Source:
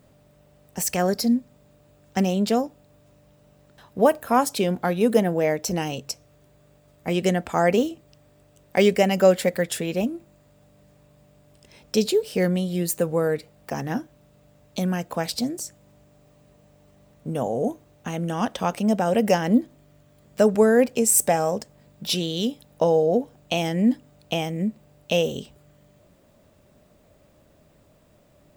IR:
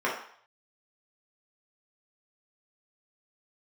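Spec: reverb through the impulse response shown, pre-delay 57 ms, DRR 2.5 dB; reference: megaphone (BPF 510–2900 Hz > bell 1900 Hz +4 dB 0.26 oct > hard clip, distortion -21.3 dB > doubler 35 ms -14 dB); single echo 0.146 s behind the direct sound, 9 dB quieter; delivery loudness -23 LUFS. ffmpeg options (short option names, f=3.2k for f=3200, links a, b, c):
-filter_complex "[0:a]aecho=1:1:146:0.355,asplit=2[a][b];[1:a]atrim=start_sample=2205,adelay=57[c];[b][c]afir=irnorm=-1:irlink=0,volume=-15dB[d];[a][d]amix=inputs=2:normalize=0,highpass=510,lowpass=2.9k,equalizer=f=1.9k:t=o:w=0.26:g=4,asoftclip=type=hard:threshold=-13dB,asplit=2[e][f];[f]adelay=35,volume=-14dB[g];[e][g]amix=inputs=2:normalize=0,volume=2dB"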